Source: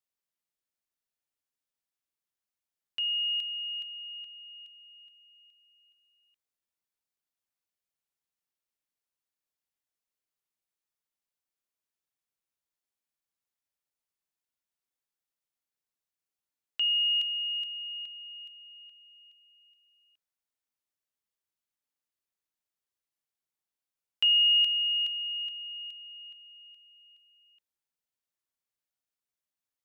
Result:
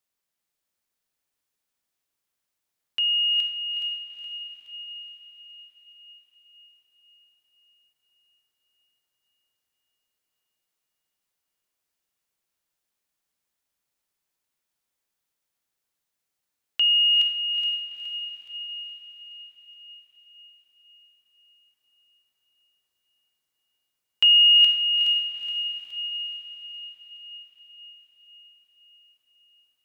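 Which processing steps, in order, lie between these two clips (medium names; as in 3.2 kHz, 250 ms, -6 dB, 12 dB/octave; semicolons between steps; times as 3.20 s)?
echo that smears into a reverb 452 ms, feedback 59%, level -5 dB; trim +7 dB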